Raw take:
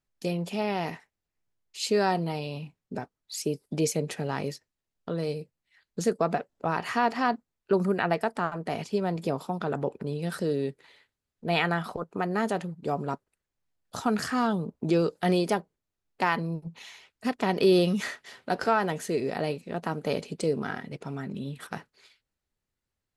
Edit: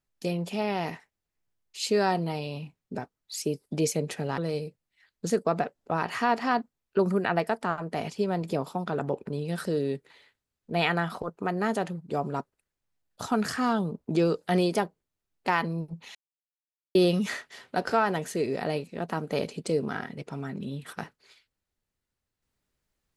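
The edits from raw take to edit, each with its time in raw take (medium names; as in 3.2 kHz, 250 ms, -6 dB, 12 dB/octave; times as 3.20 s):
4.38–5.12 s: delete
16.89–17.69 s: mute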